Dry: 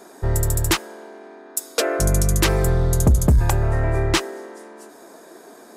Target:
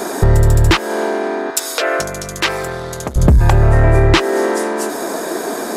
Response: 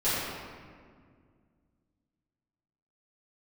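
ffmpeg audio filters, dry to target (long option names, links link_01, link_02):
-filter_complex "[0:a]acrossover=split=4800[link_01][link_02];[link_02]acompressor=threshold=-41dB:ratio=4:attack=1:release=60[link_03];[link_01][link_03]amix=inputs=2:normalize=0,asplit=2[link_04][link_05];[link_05]asoftclip=type=tanh:threshold=-17dB,volume=-3dB[link_06];[link_04][link_06]amix=inputs=2:normalize=0,acompressor=threshold=-26dB:ratio=5,asettb=1/sr,asplit=3[link_07][link_08][link_09];[link_07]atrim=end=1.504[link_10];[link_08]atrim=start=1.5:end=3.16,asetpts=PTS-STARTPTS,afade=type=in:duration=0.004:curve=qsin,afade=type=out:start_time=1.656:duration=0.004:curve=qsin,highpass=frequency=1100:poles=1[link_11];[link_09]atrim=start=3.156[link_12];[link_10][link_11]acrossfade=duration=0.004:curve1=hsin:curve2=qsin[link_13];[link_13][link_12]acrossfade=duration=0.004:curve1=qsin:curve2=hsin,alimiter=level_in=18.5dB:limit=-1dB:release=50:level=0:latency=1,volume=-1dB"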